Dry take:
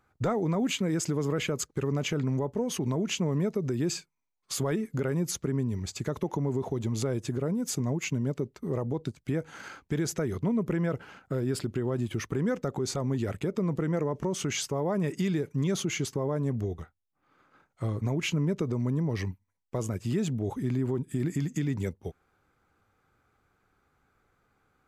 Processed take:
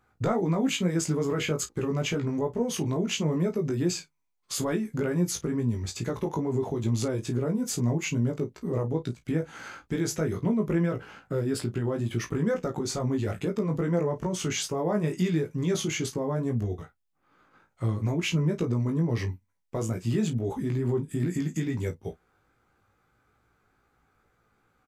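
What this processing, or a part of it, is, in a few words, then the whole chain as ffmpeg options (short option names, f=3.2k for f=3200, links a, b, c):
double-tracked vocal: -filter_complex "[0:a]asplit=2[a][b];[b]adelay=33,volume=-13dB[c];[a][c]amix=inputs=2:normalize=0,flanger=delay=17:depth=2.1:speed=2.3,volume=4.5dB"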